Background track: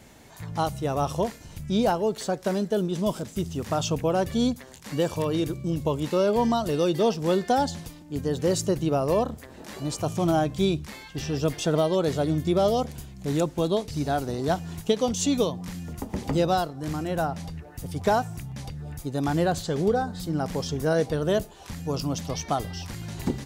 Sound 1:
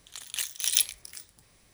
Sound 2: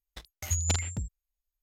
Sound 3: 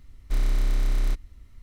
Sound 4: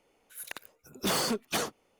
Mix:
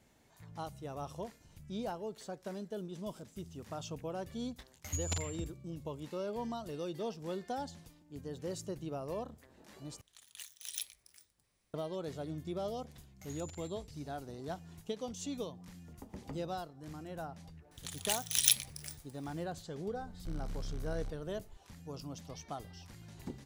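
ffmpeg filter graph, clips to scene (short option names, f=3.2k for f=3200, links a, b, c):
-filter_complex "[2:a]asplit=2[a][b];[1:a]asplit=2[c][d];[0:a]volume=-16.5dB[e];[b]acompressor=threshold=-29dB:ratio=6:attack=3.2:release=140:knee=1:detection=peak[f];[3:a]asoftclip=type=tanh:threshold=-30dB[g];[e]asplit=2[h][i];[h]atrim=end=10.014[j];[c]atrim=end=1.73,asetpts=PTS-STARTPTS,volume=-17dB[k];[i]atrim=start=11.736[l];[a]atrim=end=1.62,asetpts=PTS-STARTPTS,volume=-8.5dB,afade=t=in:d=0.004:c=hsin,afade=t=out:st=1.616:d=0.004:c=hsin,adelay=4420[m];[f]atrim=end=1.62,asetpts=PTS-STARTPTS,volume=-17dB,afade=t=in:d=0.004:c=hsin,afade=t=out:st=1.616:d=0.004:c=hsin,adelay=12790[n];[d]atrim=end=1.73,asetpts=PTS-STARTPTS,volume=-3dB,afade=t=in:d=0.004:c=hsin,afade=t=out:st=1.726:d=0.004:c=hsin,adelay=17710[o];[g]atrim=end=1.62,asetpts=PTS-STARTPTS,volume=-7.5dB,afade=t=in:d=0.004:c=hsin,afade=t=out:st=1.616:d=0.004:c=hsin,adelay=19950[p];[j][k]acrossfade=d=0.004:c1=hsin:c2=hsin[q];[q][l]acrossfade=d=0.004:c1=hsin:c2=hsin[r];[r][m][n][o][p]amix=inputs=5:normalize=0"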